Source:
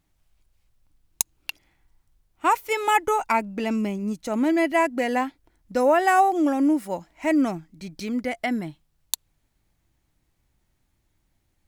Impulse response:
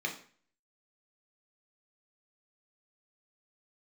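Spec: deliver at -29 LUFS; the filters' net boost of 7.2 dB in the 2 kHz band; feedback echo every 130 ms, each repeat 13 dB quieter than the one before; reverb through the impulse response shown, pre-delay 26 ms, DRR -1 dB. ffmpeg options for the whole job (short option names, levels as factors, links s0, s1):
-filter_complex "[0:a]equalizer=f=2000:t=o:g=8.5,aecho=1:1:130|260|390:0.224|0.0493|0.0108,asplit=2[s0][s1];[1:a]atrim=start_sample=2205,adelay=26[s2];[s1][s2]afir=irnorm=-1:irlink=0,volume=0.631[s3];[s0][s3]amix=inputs=2:normalize=0,volume=0.282"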